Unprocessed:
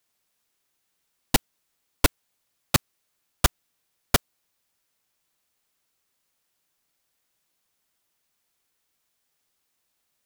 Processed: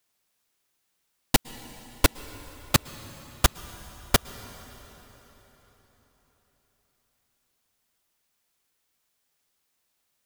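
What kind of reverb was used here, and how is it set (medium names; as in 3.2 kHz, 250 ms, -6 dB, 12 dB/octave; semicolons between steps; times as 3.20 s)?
plate-style reverb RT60 4.4 s, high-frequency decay 0.8×, pre-delay 100 ms, DRR 15.5 dB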